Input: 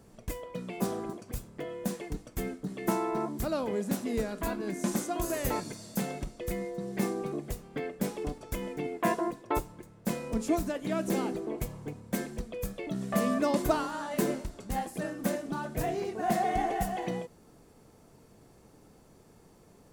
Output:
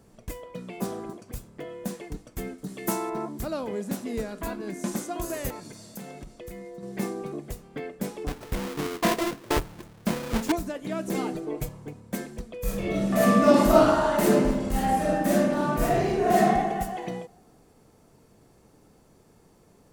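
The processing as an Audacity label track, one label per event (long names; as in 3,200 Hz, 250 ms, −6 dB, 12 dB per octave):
2.580000	3.100000	high-shelf EQ 4,300 Hz +10.5 dB
5.500000	6.830000	downward compressor 2.5 to 1, threshold −39 dBFS
8.270000	10.520000	each half-wave held at its own peak
11.140000	11.690000	comb filter 6.6 ms, depth 97%
12.600000	16.440000	thrown reverb, RT60 1.3 s, DRR −8.5 dB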